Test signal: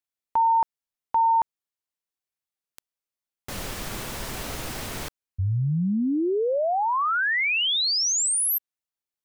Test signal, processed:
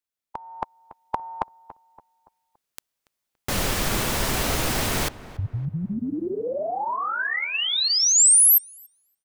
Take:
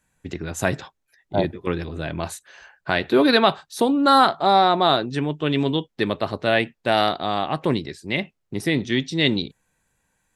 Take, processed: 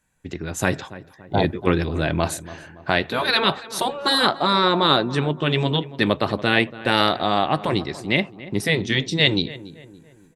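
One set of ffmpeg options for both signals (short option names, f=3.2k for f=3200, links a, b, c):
-filter_complex "[0:a]afftfilt=real='re*lt(hypot(re,im),0.631)':imag='im*lt(hypot(re,im),0.631)':win_size=1024:overlap=0.75,dynaudnorm=f=380:g=3:m=10dB,asplit=2[a][b];[b]adelay=284,lowpass=f=1.8k:p=1,volume=-16dB,asplit=2[c][d];[d]adelay=284,lowpass=f=1.8k:p=1,volume=0.46,asplit=2[e][f];[f]adelay=284,lowpass=f=1.8k:p=1,volume=0.46,asplit=2[g][h];[h]adelay=284,lowpass=f=1.8k:p=1,volume=0.46[i];[a][c][e][g][i]amix=inputs=5:normalize=0,volume=-1dB"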